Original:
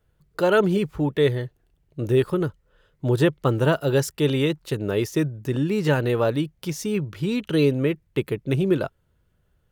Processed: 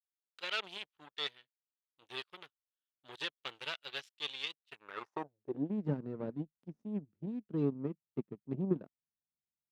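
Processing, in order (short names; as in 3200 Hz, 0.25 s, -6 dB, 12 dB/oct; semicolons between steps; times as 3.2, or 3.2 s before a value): added harmonics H 4 -24 dB, 5 -44 dB, 7 -17 dB, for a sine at -6.5 dBFS; band-pass sweep 3300 Hz -> 220 Hz, 4.64–5.72; gain -4 dB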